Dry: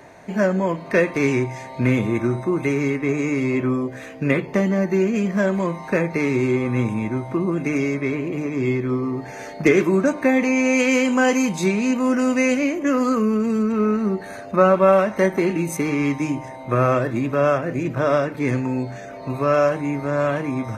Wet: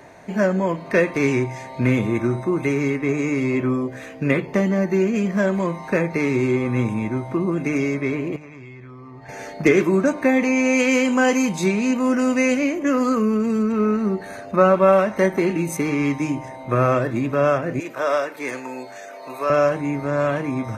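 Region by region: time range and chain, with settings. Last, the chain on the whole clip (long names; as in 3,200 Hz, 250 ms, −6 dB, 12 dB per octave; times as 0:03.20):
0:08.36–0:09.29: low-pass filter 2,400 Hz 6 dB per octave + parametric band 310 Hz −13.5 dB 2.2 octaves + downward compressor 10 to 1, threshold −36 dBFS
0:17.80–0:19.50: high-pass filter 500 Hz + high-shelf EQ 8,300 Hz +10 dB
whole clip: no processing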